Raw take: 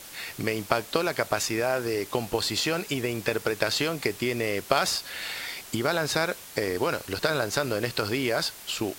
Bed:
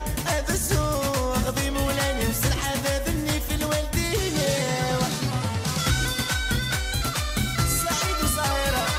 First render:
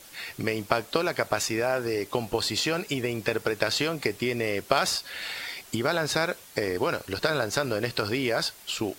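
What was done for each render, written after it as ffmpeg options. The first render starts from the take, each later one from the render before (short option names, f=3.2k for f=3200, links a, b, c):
-af "afftdn=nr=6:nf=-45"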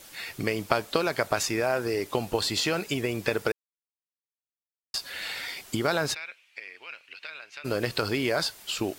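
-filter_complex "[0:a]asplit=3[a][b][c];[a]afade=t=out:st=6.13:d=0.02[d];[b]bandpass=f=2.5k:t=q:w=5,afade=t=in:st=6.13:d=0.02,afade=t=out:st=7.64:d=0.02[e];[c]afade=t=in:st=7.64:d=0.02[f];[d][e][f]amix=inputs=3:normalize=0,asplit=3[g][h][i];[g]atrim=end=3.52,asetpts=PTS-STARTPTS,afade=t=out:st=3.516:d=0.004:c=hsin[j];[h]atrim=start=3.52:end=4.94,asetpts=PTS-STARTPTS,volume=0[k];[i]atrim=start=4.94,asetpts=PTS-STARTPTS,afade=t=in:d=0.004:c=hsin[l];[j][k][l]concat=n=3:v=0:a=1"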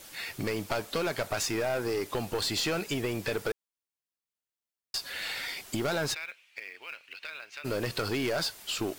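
-af "acrusher=bits=5:mode=log:mix=0:aa=0.000001,aeval=exprs='(tanh(15.8*val(0)+0.1)-tanh(0.1))/15.8':c=same"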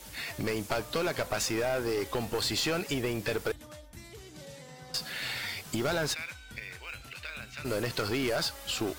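-filter_complex "[1:a]volume=-23.5dB[a];[0:a][a]amix=inputs=2:normalize=0"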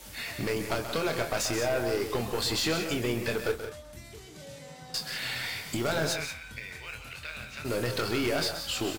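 -filter_complex "[0:a]asplit=2[a][b];[b]adelay=25,volume=-7.5dB[c];[a][c]amix=inputs=2:normalize=0,aecho=1:1:131.2|177.8:0.316|0.316"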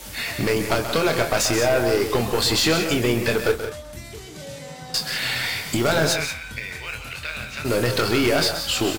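-af "volume=9dB"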